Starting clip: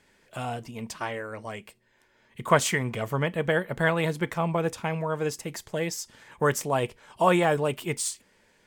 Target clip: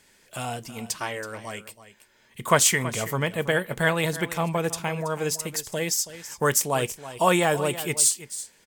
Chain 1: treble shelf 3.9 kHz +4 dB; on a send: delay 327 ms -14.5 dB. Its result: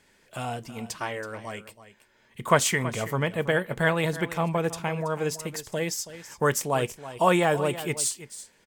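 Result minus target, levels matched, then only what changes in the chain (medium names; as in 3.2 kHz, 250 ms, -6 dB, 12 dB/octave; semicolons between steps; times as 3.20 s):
8 kHz band -5.0 dB
change: treble shelf 3.9 kHz +13 dB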